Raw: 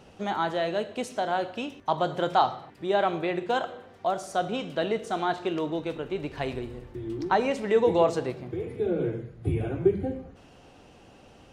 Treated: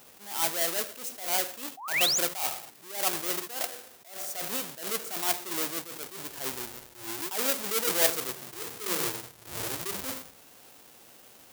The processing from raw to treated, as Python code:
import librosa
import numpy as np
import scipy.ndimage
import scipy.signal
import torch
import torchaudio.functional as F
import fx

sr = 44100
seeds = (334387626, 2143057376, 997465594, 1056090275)

y = fx.halfwave_hold(x, sr)
y = fx.riaa(y, sr, side='recording')
y = fx.spec_paint(y, sr, seeds[0], shape='rise', start_s=1.77, length_s=0.42, low_hz=710.0, high_hz=7500.0, level_db=-19.0)
y = fx.attack_slew(y, sr, db_per_s=110.0)
y = y * librosa.db_to_amplitude(-7.0)